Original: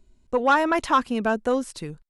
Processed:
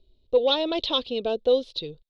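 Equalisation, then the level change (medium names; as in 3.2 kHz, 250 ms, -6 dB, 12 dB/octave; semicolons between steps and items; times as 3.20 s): FFT filter 120 Hz 0 dB, 210 Hz -8 dB, 500 Hz +8 dB, 880 Hz -8 dB, 1.7 kHz -19 dB, 3.7 kHz +13 dB, 8 kHz -25 dB; dynamic bell 3.9 kHz, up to +7 dB, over -41 dBFS, Q 1.1; -3.5 dB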